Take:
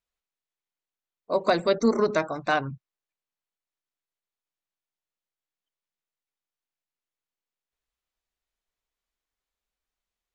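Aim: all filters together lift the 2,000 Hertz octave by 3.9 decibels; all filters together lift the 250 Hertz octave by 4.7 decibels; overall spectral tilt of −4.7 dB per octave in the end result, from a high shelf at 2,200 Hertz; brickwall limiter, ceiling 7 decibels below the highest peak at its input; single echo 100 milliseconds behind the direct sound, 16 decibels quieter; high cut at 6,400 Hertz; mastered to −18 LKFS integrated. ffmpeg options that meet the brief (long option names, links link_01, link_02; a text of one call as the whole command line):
ffmpeg -i in.wav -af "lowpass=6400,equalizer=frequency=250:width_type=o:gain=5.5,equalizer=frequency=2000:width_type=o:gain=7.5,highshelf=frequency=2200:gain=-3.5,alimiter=limit=-14dB:level=0:latency=1,aecho=1:1:100:0.158,volume=8.5dB" out.wav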